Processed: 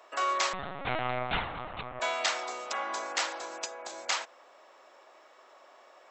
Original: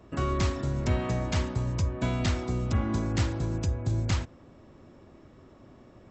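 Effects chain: high-pass 630 Hz 24 dB/octave; 0.53–2.00 s: LPC vocoder at 8 kHz pitch kept; trim +6 dB

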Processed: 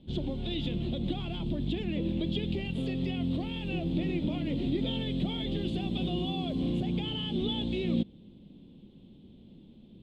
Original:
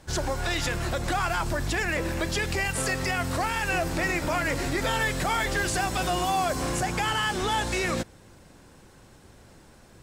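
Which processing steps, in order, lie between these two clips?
FFT filter 110 Hz 0 dB, 210 Hz +14 dB, 1.6 kHz -26 dB, 3.4 kHz +6 dB, 5.6 kHz -28 dB; trim -5.5 dB

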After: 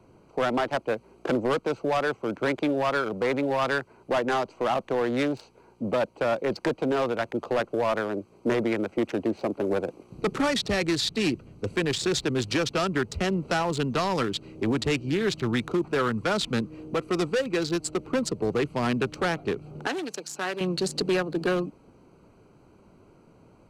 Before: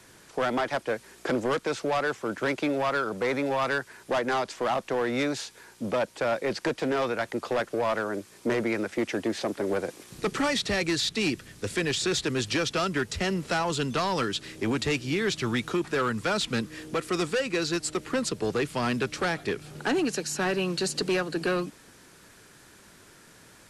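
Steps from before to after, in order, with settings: local Wiener filter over 25 samples; 19.87–20.61 s: high-pass 870 Hz 6 dB/octave; trim +2.5 dB

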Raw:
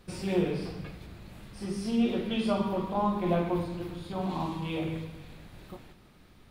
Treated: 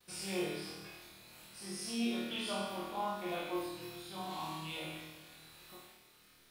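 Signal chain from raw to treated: gate with hold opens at -50 dBFS; tilt EQ +3.5 dB/octave; feedback comb 360 Hz, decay 0.91 s, mix 80%; on a send: flutter echo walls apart 4.4 m, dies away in 0.78 s; on the sum: trim +3 dB

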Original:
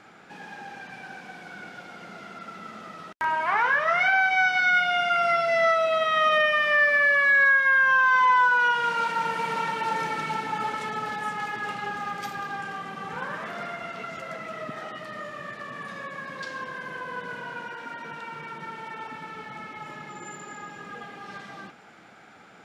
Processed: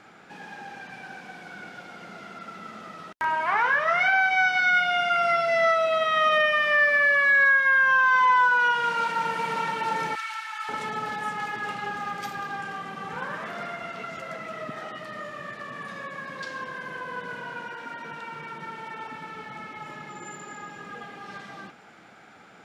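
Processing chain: 10.15–10.69 s: high-pass 1.2 kHz 24 dB/octave

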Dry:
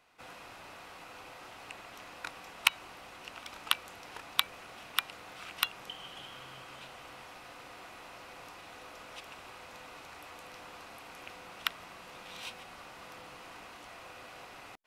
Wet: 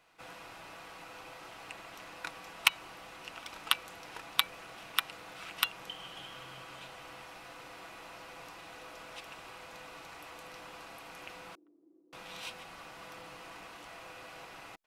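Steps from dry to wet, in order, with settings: comb 6.1 ms, depth 31%; 11.55–12.13 s: Butterworth band-pass 320 Hz, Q 3.9

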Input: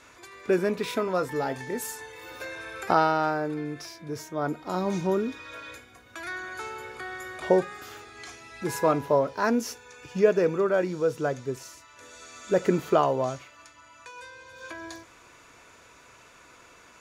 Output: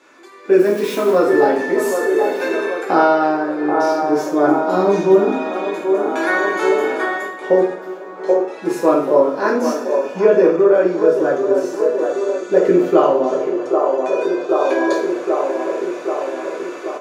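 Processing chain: 0.59–1.12 s: zero-crossing glitches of -28.5 dBFS; high-pass 230 Hz 24 dB/octave; bass shelf 450 Hz +7.5 dB; 7.73–8.48 s: gate -39 dBFS, range -15 dB; feedback echo behind a band-pass 782 ms, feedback 62%, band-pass 660 Hz, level -7.5 dB; reverberation, pre-delay 3 ms, DRR -3.5 dB; level rider gain up to 13 dB; treble shelf 4.4 kHz -8 dB; trim -1 dB

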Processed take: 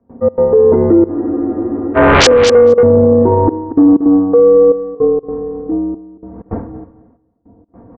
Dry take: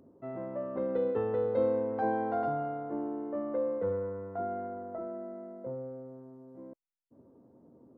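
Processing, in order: wind noise 200 Hz -43 dBFS; Doppler pass-by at 2.26 s, 18 m/s, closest 1 m; high-order bell 590 Hz +8.5 dB 2.5 oct; comb 4.5 ms, depth 74%; in parallel at -1.5 dB: compression, threshold -42 dBFS, peak gain reduction 22 dB; on the sum: mistuned SSB -180 Hz 310–2100 Hz; trance gate ".xx.xxxxxxx.." 159 bpm -24 dB; sine folder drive 20 dB, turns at -12.5 dBFS; on a send: feedback delay 230 ms, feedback 18%, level -16 dB; on the sum: dynamic bell 460 Hz, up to +7 dB, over -35 dBFS, Q 2.1; loudness maximiser +19.5 dB; spectral freeze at 1.13 s, 0.83 s; trim -1 dB

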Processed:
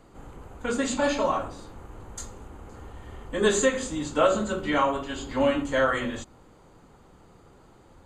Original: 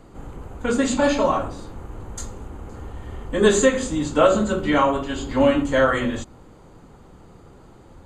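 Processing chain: bass shelf 460 Hz -5 dB; trim -3.5 dB

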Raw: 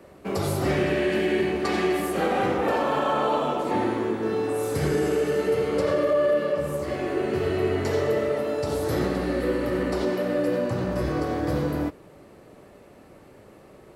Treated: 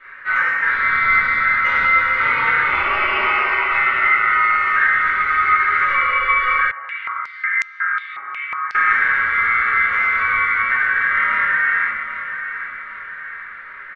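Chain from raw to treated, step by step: tilt EQ -4 dB/octave; compression, threshold -18 dBFS, peak gain reduction 8 dB; flange 0.26 Hz, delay 7.5 ms, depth 6.8 ms, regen -60%; ring modulator 1.7 kHz; distance through air 78 m; feedback delay 792 ms, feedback 49%, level -10.5 dB; reverberation RT60 0.60 s, pre-delay 3 ms, DRR -11 dB; 6.71–8.75 s: step-sequenced band-pass 5.5 Hz 800–6600 Hz

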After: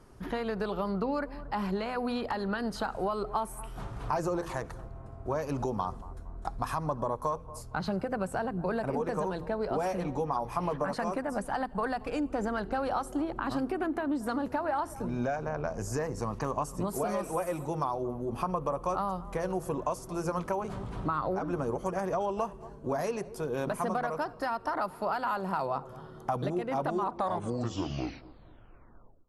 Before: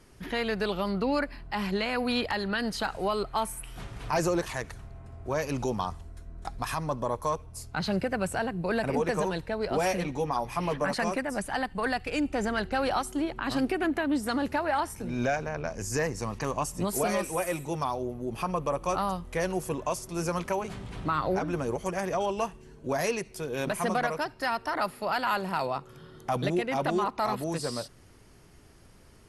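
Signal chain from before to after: tape stop on the ending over 2.31 s; on a send: bucket-brigade echo 230 ms, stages 2048, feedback 40%, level -21.5 dB; on the sum: compression, threshold -29 dBFS, peak gain reduction 7 dB; resonant high shelf 1.6 kHz -7 dB, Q 1.5; de-hum 83.82 Hz, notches 6; trim +1.5 dB

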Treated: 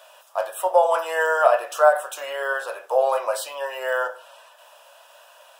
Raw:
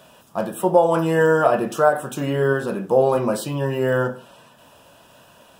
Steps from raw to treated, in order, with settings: elliptic high-pass 570 Hz, stop band 70 dB; trim +1.5 dB

